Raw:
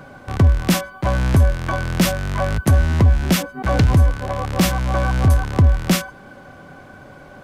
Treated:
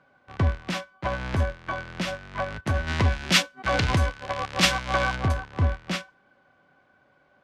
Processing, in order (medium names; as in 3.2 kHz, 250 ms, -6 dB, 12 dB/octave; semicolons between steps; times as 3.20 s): low-pass 3.2 kHz 12 dB/octave; tilt EQ +2.5 dB/octave; Schroeder reverb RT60 0.33 s, combs from 26 ms, DRR 17.5 dB; peak limiter -15 dBFS, peak gain reduction 8 dB; 2.87–5.16 s: treble shelf 2.2 kHz +10 dB; upward expansion 2.5:1, over -34 dBFS; trim +3.5 dB